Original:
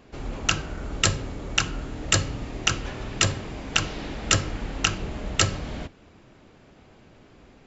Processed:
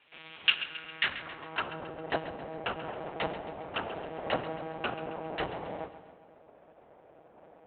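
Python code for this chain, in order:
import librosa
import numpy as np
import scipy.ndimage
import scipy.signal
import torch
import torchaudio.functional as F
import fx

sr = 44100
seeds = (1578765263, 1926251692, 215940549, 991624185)

p1 = x + 0.92 * np.pad(x, (int(2.7 * sr / 1000.0), 0))[:len(x)]
p2 = fx.lpc_monotone(p1, sr, seeds[0], pitch_hz=160.0, order=8)
p3 = fx.filter_sweep_bandpass(p2, sr, from_hz=2900.0, to_hz=670.0, start_s=0.75, end_s=1.79, q=1.7)
p4 = p3 + fx.echo_feedback(p3, sr, ms=135, feedback_pct=52, wet_db=-13.5, dry=0)
p5 = fx.rev_schroeder(p4, sr, rt60_s=1.9, comb_ms=27, drr_db=18.5)
p6 = fx.rider(p5, sr, range_db=4, speed_s=2.0)
p7 = p5 + F.gain(torch.from_numpy(p6), -1.0).numpy()
y = F.gain(torch.from_numpy(p7), -6.5).numpy()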